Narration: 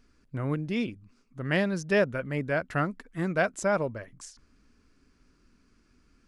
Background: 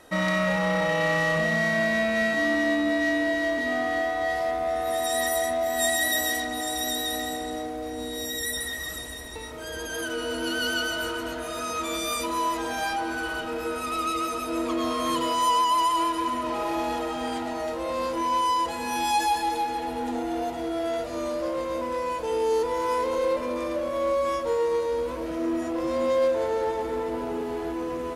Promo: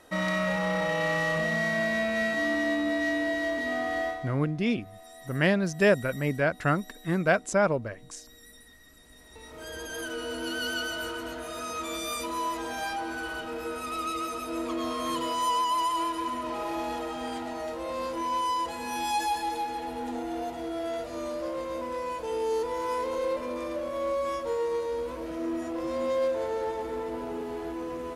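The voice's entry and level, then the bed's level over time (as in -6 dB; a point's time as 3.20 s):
3.90 s, +2.5 dB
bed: 4.09 s -3.5 dB
4.38 s -23 dB
8.93 s -23 dB
9.62 s -4.5 dB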